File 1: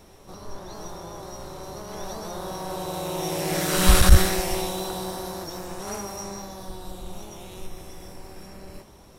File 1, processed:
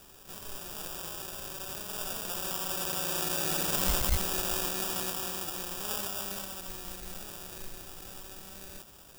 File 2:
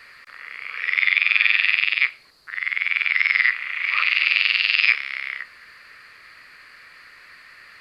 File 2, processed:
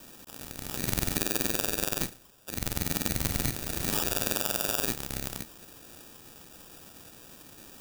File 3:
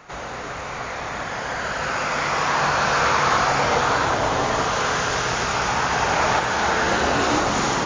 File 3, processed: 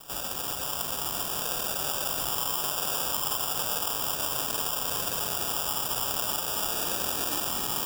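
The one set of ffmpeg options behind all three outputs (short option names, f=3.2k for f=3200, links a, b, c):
-af "acrusher=samples=21:mix=1:aa=0.000001,crystalizer=i=6:c=0,acompressor=threshold=-14dB:ratio=6,volume=-8.5dB"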